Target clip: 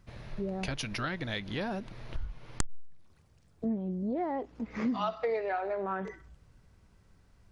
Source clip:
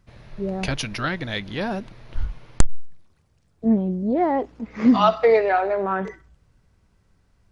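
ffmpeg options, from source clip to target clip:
-af "acompressor=threshold=-34dB:ratio=3"

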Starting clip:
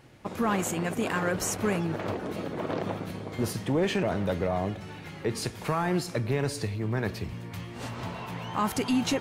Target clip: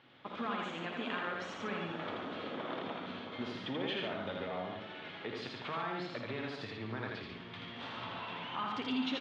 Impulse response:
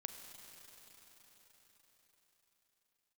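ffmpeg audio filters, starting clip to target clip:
-filter_complex "[0:a]lowshelf=f=470:g=-11.5,acompressor=threshold=-37dB:ratio=2,highpass=100,equalizer=f=250:t=q:w=4:g=7,equalizer=f=1.3k:t=q:w=4:g=4,equalizer=f=3.4k:t=q:w=4:g=9,lowpass=f=3.8k:w=0.5412,lowpass=f=3.8k:w=1.3066,aecho=1:1:81.63|142.9:0.708|0.447,asplit=2[a][b];[1:a]atrim=start_sample=2205,asetrate=27342,aresample=44100,adelay=54[c];[b][c]afir=irnorm=-1:irlink=0,volume=-9dB[d];[a][d]amix=inputs=2:normalize=0,volume=-4.5dB"

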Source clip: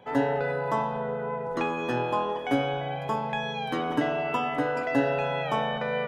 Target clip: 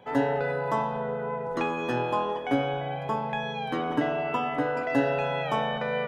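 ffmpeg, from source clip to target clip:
-filter_complex "[0:a]asettb=1/sr,asplit=3[a][b][c];[a]atrim=end=2.394[d];[b]atrim=start=2.39:end=4.9,asetpts=PTS-STARTPTS,afade=t=in:d=0.004:c=qsin,afade=t=out:st=2.506:d=0.004:c=qsin,highshelf=f=4.3k:g=-7[e];[c]atrim=start=4.896[f];[d][e]acrossfade=d=0.004:c1=hsin:c2=qsin[g];[g][f]acrossfade=d=0.004:c1=qsin:c2=hsin"

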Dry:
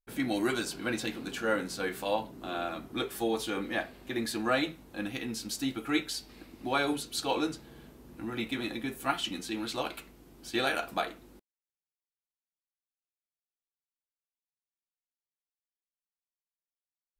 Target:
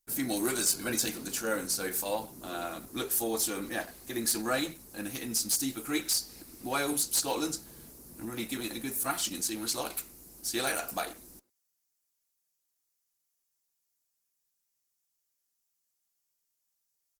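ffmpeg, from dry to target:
-filter_complex "[0:a]aexciter=amount=6.9:drive=4.5:freq=4.7k,aeval=exprs='0.422*(cos(1*acos(clip(val(0)/0.422,-1,1)))-cos(1*PI/2))+0.0119*(cos(2*acos(clip(val(0)/0.422,-1,1)))-cos(2*PI/2))+0.0119*(cos(3*acos(clip(val(0)/0.422,-1,1)))-cos(3*PI/2))+0.119*(cos(5*acos(clip(val(0)/0.422,-1,1)))-cos(5*PI/2))+0.0075*(cos(7*acos(clip(val(0)/0.422,-1,1)))-cos(7*PI/2))':c=same,asplit=2[a][b];[b]adelay=100,highpass=300,lowpass=3.4k,asoftclip=type=hard:threshold=-15.5dB,volume=-18dB[c];[a][c]amix=inputs=2:normalize=0,volume=-8dB" -ar 48000 -c:a libopus -b:a 16k

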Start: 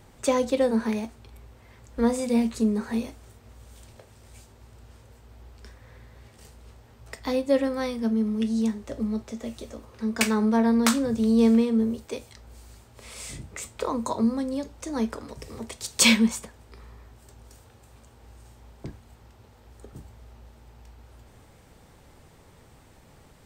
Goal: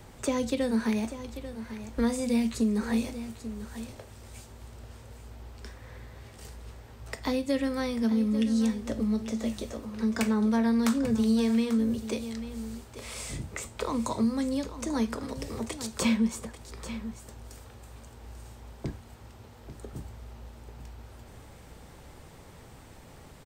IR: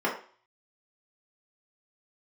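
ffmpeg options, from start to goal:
-filter_complex "[0:a]acrossover=split=240|1500[a][b][c];[a]acompressor=threshold=-30dB:ratio=4[d];[b]acompressor=threshold=-36dB:ratio=4[e];[c]acompressor=threshold=-41dB:ratio=4[f];[d][e][f]amix=inputs=3:normalize=0,aecho=1:1:841:0.237,volume=3.5dB"

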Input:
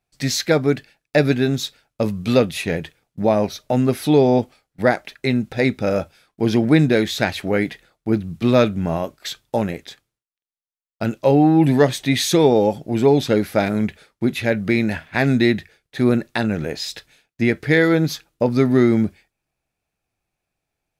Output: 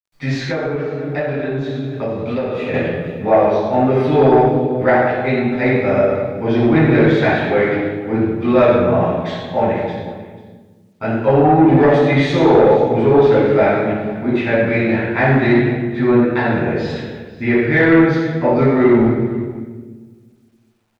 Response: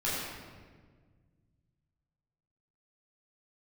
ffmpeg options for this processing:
-filter_complex "[0:a]lowshelf=f=410:g=-10[a];[1:a]atrim=start_sample=2205,asetrate=61740,aresample=44100[b];[a][b]afir=irnorm=-1:irlink=0,asoftclip=type=tanh:threshold=-9dB,lowpass=1.8k,aecho=1:1:100|188|490:0.211|0.119|0.119,acrusher=bits=11:mix=0:aa=0.000001,equalizer=f=210:w=6.9:g=-8,asettb=1/sr,asplit=3[c][d][e];[c]atrim=end=0.444[f];[d]atrim=start=0.44:end=2.74,asetpts=PTS-STARTPTS,afade=t=in:d=0.004:c=qsin,afade=t=out:st=2.296:d=0.004:c=qsin,acompressor=threshold=-24dB:ratio=5[g];[e]atrim=start=2.736[h];[f][g]acrossfade=d=0.004:c1=hsin:c2=qsin[i];[i][h]acrossfade=d=0.004:c1=qsin:c2=hsin,volume=5dB"

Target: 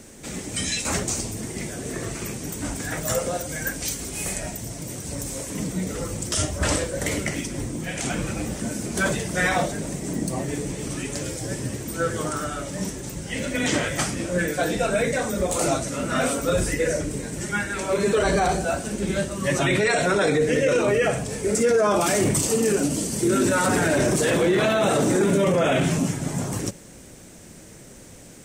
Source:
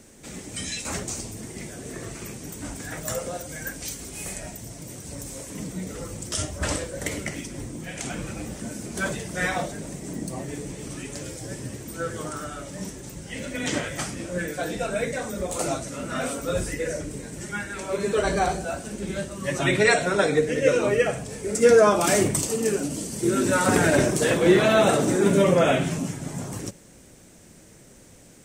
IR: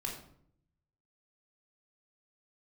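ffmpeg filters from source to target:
-af "alimiter=limit=-18dB:level=0:latency=1:release=15,volume=5.5dB"

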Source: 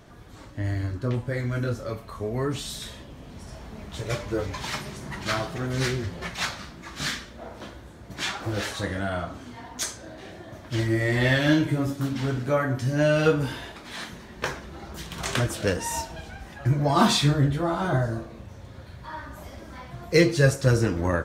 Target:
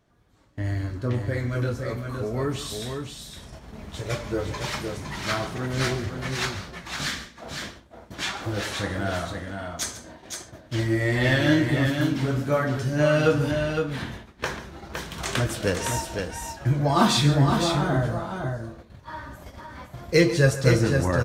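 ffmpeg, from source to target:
-filter_complex "[0:a]agate=range=-16dB:threshold=-40dB:ratio=16:detection=peak,asettb=1/sr,asplit=3[a][b][c];[a]atrim=end=13.514[d];[b]atrim=start=13.51:end=14.12,asetpts=PTS-STARTPTS,afade=t=in:d=0.004:c=qsin,afade=t=out:st=0.606:d=0.004:c=qsin,bass=f=250:g=10,treble=f=4k:g=-8[e];[c]atrim=start=14.116[f];[d][e]acrossfade=d=0.004:c1=hsin:c2=qsin[g];[g][f]acrossfade=d=0.004:c1=qsin:c2=hsin,aecho=1:1:139|512:0.178|0.531"

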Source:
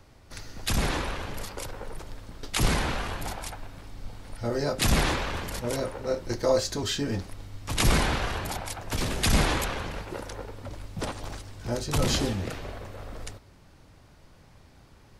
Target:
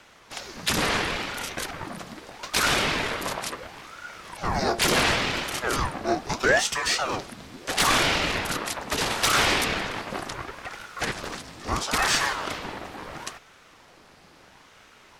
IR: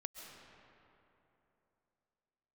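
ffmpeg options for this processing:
-filter_complex "[0:a]asplit=2[a][b];[b]highpass=f=720:p=1,volume=14dB,asoftclip=type=tanh:threshold=-10dB[c];[a][c]amix=inputs=2:normalize=0,lowpass=f=6.2k:p=1,volume=-6dB,aeval=exprs='val(0)*sin(2*PI*800*n/s+800*0.8/0.74*sin(2*PI*0.74*n/s))':c=same,volume=2.5dB"

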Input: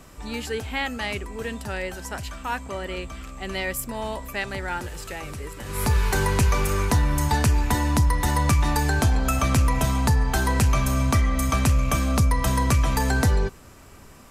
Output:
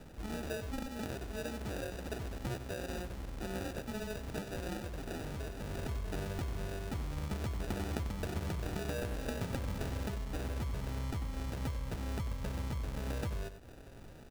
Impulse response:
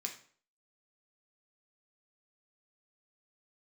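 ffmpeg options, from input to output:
-filter_complex "[0:a]asettb=1/sr,asplit=3[a][b][c];[a]atrim=end=7.604[d];[b]atrim=start=7.6:end=10.16,asetpts=PTS-STARTPTS,afade=t=in:d=0.004:c=qsin,afade=t=out:st=2.556:d=0.004:c=qsin,equalizer=f=3.1k:w=0.3:g=13[e];[c]atrim=start=10.156[f];[d][e]acrossfade=d=0.004:c1=hsin:c2=qsin[g];[g][f]acrossfade=d=0.004:c1=qsin:c2=hsin,acompressor=threshold=-31dB:ratio=6,acrusher=samples=41:mix=1:aa=0.000001,aecho=1:1:94:0.282,volume=-5dB"

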